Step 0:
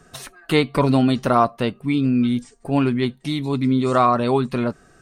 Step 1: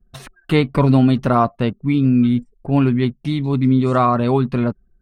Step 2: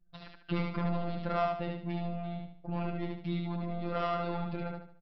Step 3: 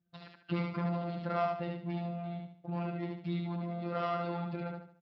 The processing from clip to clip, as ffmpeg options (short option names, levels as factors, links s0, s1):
-af "anlmdn=1,bass=f=250:g=7,treble=f=4000:g=-7"
-af "aresample=11025,asoftclip=type=tanh:threshold=0.178,aresample=44100,afftfilt=real='hypot(re,im)*cos(PI*b)':imag='0':win_size=1024:overlap=0.75,aecho=1:1:74|148|222|296|370:0.708|0.262|0.0969|0.0359|0.0133,volume=0.376"
-af "volume=0.841" -ar 16000 -c:a libspeex -b:a 34k